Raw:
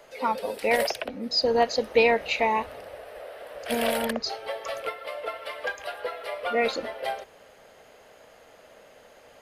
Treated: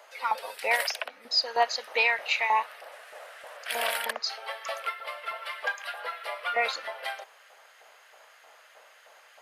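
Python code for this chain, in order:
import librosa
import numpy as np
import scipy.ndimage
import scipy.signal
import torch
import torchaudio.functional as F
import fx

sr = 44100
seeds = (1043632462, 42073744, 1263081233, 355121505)

y = fx.cvsd(x, sr, bps=64000, at=(2.91, 3.57))
y = fx.filter_lfo_highpass(y, sr, shape='saw_up', hz=3.2, low_hz=790.0, high_hz=1600.0, q=1.3)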